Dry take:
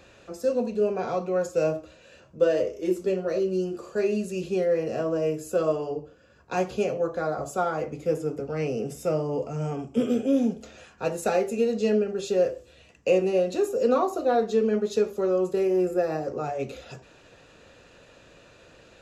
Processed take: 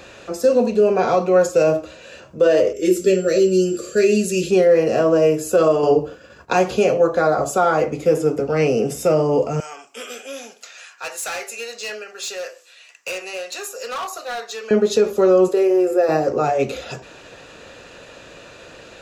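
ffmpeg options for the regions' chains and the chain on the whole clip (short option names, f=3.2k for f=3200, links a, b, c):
-filter_complex "[0:a]asettb=1/sr,asplit=3[a][b][c];[a]atrim=end=2.734[d];[b]atrim=start=2.73:end=4.51,asetpts=PTS-STARTPTS,afade=t=in:d=0.004:c=qsin,afade=t=out:st=1.776:d=0.004:c=qsin,asuperstop=centerf=890:order=4:qfactor=0.99,aeval=exprs='val(0)+0.00141*sin(2*PI*7400*n/s)':c=same,adynamicequalizer=threshold=0.00282:dfrequency=3500:dqfactor=0.7:tfrequency=3500:tqfactor=0.7:attack=5:release=100:ratio=0.375:range=2.5:mode=boostabove:tftype=highshelf[e];[c]atrim=start=4.506[f];[d][e]acrossfade=d=0.004:c1=hsin:c2=qsin[g];[g][f]acrossfade=d=0.004:c1=qsin:c2=hsin,asettb=1/sr,asplit=3[h][i][j];[h]atrim=end=5.834[k];[i]atrim=start=5.83:end=6.53,asetpts=PTS-STARTPTS,afade=t=in:d=0.004:c=qsin,afade=t=out:st=0.696:d=0.004:c=qsin,agate=range=-33dB:threshold=-55dB:ratio=3:release=100:detection=peak,acontrast=38[l];[j]atrim=start=6.526[m];[k][l]acrossfade=d=0.004:c1=hsin:c2=qsin[n];[n][m]acrossfade=d=0.004:c1=qsin:c2=hsin,asettb=1/sr,asplit=3[o][p][q];[o]atrim=end=9.604[r];[p]atrim=start=9.6:end=14.71,asetpts=PTS-STARTPTS,afade=t=in:d=0.004:c=qsin,afade=t=out:st=5.106:d=0.004:c=qsin,highpass=1.5k,equalizer=f=3.2k:t=o:w=0.37:g=-4,asoftclip=type=hard:threshold=-36dB[s];[q]atrim=start=14.706[t];[r][s]acrossfade=d=0.004:c1=hsin:c2=qsin[u];[u][t]acrossfade=d=0.004:c1=qsin:c2=hsin,asettb=1/sr,asplit=3[v][w][x];[v]atrim=end=15.484[y];[w]atrim=start=15.48:end=16.09,asetpts=PTS-STARTPTS,afade=t=in:d=0.004:c=qsin,afade=t=out:st=0.606:d=0.004:c=qsin,lowshelf=f=270:t=q:w=1.5:g=-11.5,acompressor=threshold=-33dB:ratio=1.5:attack=3.2:release=140:knee=1:detection=peak[z];[x]atrim=start=16.086[aa];[y][z]acrossfade=d=0.004:c1=hsin:c2=qsin[ab];[ab][aa]acrossfade=d=0.004:c1=qsin:c2=hsin,lowshelf=f=220:g=-6.5,alimiter=level_in=18dB:limit=-1dB:release=50:level=0:latency=1,volume=-5.5dB"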